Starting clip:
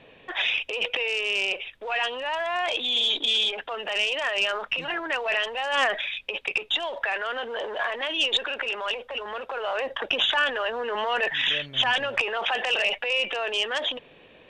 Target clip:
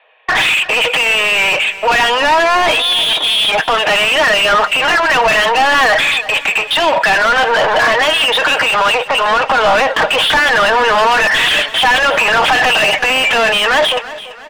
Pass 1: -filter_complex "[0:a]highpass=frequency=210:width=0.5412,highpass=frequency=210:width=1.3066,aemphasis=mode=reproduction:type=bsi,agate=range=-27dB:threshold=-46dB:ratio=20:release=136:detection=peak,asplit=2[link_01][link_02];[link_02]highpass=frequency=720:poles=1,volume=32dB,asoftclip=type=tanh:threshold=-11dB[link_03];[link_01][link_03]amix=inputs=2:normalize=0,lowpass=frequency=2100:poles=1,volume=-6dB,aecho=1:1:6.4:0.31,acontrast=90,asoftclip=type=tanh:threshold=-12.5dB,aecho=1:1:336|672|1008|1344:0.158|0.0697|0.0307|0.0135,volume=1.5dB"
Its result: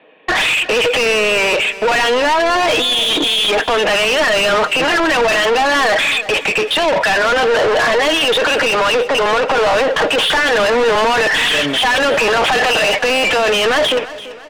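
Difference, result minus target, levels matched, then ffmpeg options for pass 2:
soft clipping: distortion +15 dB; 250 Hz band +6.5 dB
-filter_complex "[0:a]highpass=frequency=660:width=0.5412,highpass=frequency=660:width=1.3066,aemphasis=mode=reproduction:type=bsi,agate=range=-27dB:threshold=-46dB:ratio=20:release=136:detection=peak,asplit=2[link_01][link_02];[link_02]highpass=frequency=720:poles=1,volume=32dB,asoftclip=type=tanh:threshold=-11dB[link_03];[link_01][link_03]amix=inputs=2:normalize=0,lowpass=frequency=2100:poles=1,volume=-6dB,aecho=1:1:6.4:0.31,acontrast=90,asoftclip=type=tanh:threshold=-3dB,aecho=1:1:336|672|1008|1344:0.158|0.0697|0.0307|0.0135,volume=1.5dB"

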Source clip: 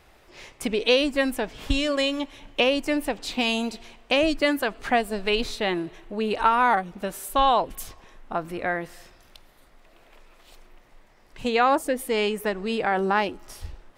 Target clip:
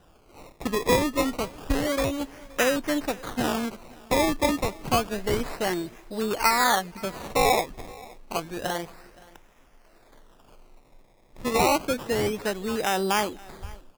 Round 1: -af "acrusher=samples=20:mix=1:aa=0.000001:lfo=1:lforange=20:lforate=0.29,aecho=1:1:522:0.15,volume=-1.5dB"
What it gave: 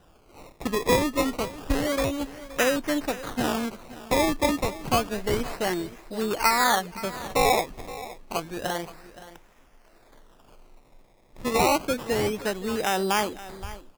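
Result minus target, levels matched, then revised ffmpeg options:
echo-to-direct +6.5 dB
-af "acrusher=samples=20:mix=1:aa=0.000001:lfo=1:lforange=20:lforate=0.29,aecho=1:1:522:0.0708,volume=-1.5dB"

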